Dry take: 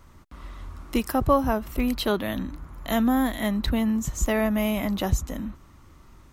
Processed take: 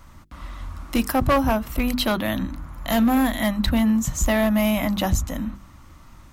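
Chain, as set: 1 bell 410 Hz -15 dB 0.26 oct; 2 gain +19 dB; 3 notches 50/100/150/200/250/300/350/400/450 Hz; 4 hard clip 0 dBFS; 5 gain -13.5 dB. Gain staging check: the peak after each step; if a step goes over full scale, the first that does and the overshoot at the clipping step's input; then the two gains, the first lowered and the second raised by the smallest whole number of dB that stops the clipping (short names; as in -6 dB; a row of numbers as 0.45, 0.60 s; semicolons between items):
-9.0, +10.0, +10.0, 0.0, -13.5 dBFS; step 2, 10.0 dB; step 2 +9 dB, step 5 -3.5 dB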